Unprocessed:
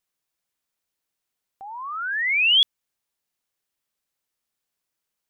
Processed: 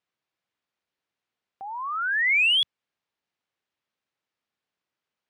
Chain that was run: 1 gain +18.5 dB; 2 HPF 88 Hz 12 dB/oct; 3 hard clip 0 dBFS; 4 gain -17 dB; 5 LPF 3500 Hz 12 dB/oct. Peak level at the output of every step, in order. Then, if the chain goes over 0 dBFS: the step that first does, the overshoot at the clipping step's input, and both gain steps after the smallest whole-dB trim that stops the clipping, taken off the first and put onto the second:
+7.0, +7.0, 0.0, -17.0, -17.0 dBFS; step 1, 7.0 dB; step 1 +11.5 dB, step 4 -10 dB

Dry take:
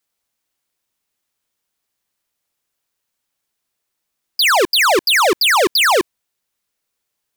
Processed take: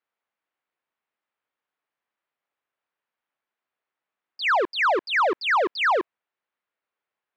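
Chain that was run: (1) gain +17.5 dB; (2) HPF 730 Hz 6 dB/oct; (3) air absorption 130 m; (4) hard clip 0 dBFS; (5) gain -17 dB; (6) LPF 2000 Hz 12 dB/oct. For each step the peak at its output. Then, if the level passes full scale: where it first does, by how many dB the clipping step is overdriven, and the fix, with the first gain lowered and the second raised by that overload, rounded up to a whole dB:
+5.0, +10.0, +7.5, 0.0, -17.0, -16.5 dBFS; step 1, 7.5 dB; step 1 +9.5 dB, step 5 -9 dB

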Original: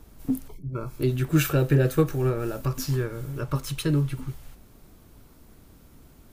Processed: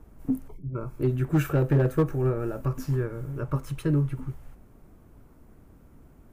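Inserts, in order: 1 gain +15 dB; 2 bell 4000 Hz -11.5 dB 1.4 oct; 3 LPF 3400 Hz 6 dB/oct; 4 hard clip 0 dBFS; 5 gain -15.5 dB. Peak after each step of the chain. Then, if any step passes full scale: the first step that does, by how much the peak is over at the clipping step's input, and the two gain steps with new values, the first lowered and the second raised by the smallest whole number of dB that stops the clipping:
+5.5, +5.0, +5.0, 0.0, -15.5 dBFS; step 1, 5.0 dB; step 1 +10 dB, step 5 -10.5 dB

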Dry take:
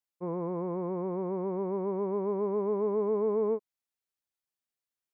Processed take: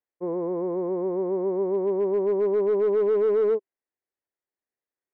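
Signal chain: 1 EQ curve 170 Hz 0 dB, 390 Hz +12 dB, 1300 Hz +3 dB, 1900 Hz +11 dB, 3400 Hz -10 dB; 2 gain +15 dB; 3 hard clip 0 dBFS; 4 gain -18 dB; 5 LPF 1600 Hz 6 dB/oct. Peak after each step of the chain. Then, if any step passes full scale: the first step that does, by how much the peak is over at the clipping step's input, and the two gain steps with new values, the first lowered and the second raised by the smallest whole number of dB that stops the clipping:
-11.0, +4.0, 0.0, -18.0, -18.0 dBFS; step 2, 4.0 dB; step 2 +11 dB, step 4 -14 dB

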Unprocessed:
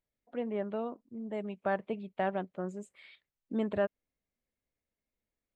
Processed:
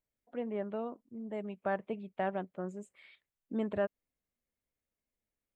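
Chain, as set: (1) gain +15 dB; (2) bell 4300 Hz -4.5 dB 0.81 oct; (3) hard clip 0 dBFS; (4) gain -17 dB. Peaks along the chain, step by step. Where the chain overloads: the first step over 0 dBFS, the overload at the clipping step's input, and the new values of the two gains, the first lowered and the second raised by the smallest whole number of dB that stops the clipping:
-4.0, -4.0, -4.0, -21.0 dBFS; no overload

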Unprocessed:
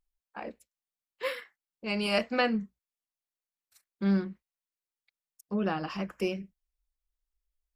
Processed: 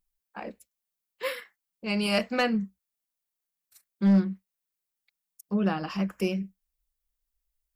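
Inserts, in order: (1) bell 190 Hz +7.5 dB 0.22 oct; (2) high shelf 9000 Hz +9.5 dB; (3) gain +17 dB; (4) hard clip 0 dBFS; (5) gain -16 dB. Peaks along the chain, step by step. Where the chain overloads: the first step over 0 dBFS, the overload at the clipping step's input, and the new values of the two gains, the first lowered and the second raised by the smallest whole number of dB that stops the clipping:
-12.5, -12.0, +5.0, 0.0, -16.0 dBFS; step 3, 5.0 dB; step 3 +12 dB, step 5 -11 dB

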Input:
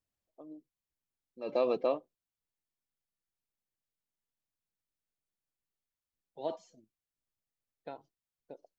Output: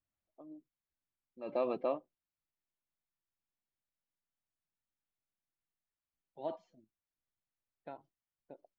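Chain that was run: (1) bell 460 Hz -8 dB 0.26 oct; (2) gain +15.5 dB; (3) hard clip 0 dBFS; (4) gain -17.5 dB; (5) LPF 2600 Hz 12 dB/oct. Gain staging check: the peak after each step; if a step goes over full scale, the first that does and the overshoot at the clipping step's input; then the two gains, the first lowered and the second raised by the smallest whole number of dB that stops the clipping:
-20.0, -4.5, -4.5, -22.0, -22.5 dBFS; no overload

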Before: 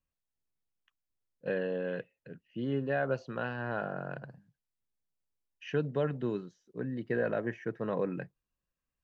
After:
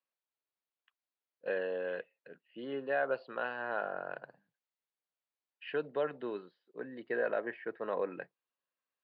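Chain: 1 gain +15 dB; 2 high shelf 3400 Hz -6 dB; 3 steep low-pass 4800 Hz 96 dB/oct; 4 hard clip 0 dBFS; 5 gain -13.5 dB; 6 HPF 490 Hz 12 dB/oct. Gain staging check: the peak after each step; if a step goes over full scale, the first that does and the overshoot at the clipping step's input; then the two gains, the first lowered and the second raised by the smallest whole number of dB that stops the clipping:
-4.0, -4.0, -4.0, -4.0, -17.5, -20.5 dBFS; no overload

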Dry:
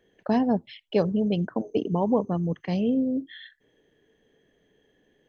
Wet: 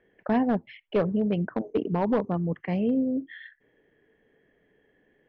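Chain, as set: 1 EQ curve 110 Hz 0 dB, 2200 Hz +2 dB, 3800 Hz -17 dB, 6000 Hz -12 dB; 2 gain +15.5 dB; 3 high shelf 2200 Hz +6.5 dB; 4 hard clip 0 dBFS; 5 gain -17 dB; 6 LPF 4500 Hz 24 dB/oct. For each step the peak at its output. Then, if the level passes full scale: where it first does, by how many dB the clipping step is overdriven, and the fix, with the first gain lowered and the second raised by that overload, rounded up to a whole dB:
-10.0, +5.5, +6.0, 0.0, -17.0, -16.5 dBFS; step 2, 6.0 dB; step 2 +9.5 dB, step 5 -11 dB

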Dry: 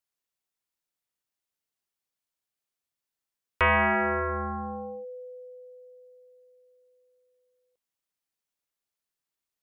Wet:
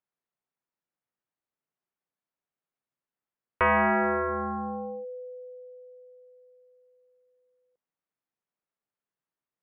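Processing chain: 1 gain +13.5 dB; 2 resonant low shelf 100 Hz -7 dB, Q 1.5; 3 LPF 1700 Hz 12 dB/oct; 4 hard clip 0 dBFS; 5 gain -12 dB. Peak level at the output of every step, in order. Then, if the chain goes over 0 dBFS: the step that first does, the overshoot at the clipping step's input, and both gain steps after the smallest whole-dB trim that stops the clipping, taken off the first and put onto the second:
-3.5, -1.0, -3.0, -3.0, -15.0 dBFS; no overload

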